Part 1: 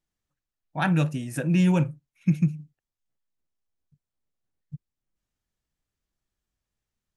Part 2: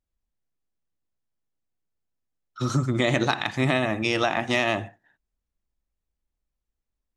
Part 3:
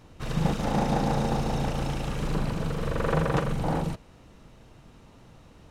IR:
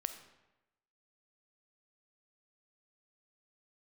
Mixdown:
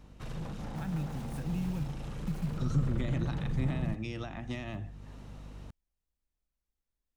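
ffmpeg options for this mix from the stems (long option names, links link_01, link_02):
-filter_complex "[0:a]acompressor=threshold=-21dB:ratio=6,acrusher=bits=5:mix=0:aa=0.000001,volume=-8.5dB[link_01];[1:a]volume=-4.5dB[link_02];[2:a]aeval=exprs='0.282*sin(PI/2*3.55*val(0)/0.282)':channel_layout=same,aeval=exprs='val(0)+0.0282*(sin(2*PI*50*n/s)+sin(2*PI*2*50*n/s)/2+sin(2*PI*3*50*n/s)/3+sin(2*PI*4*50*n/s)/4+sin(2*PI*5*50*n/s)/5)':channel_layout=same,volume=-15dB,afade=type=in:start_time=2.44:duration=0.28:silence=0.473151[link_03];[link_01][link_02][link_03]amix=inputs=3:normalize=0,acrossover=split=220[link_04][link_05];[link_05]acompressor=threshold=-47dB:ratio=3[link_06];[link_04][link_06]amix=inputs=2:normalize=0"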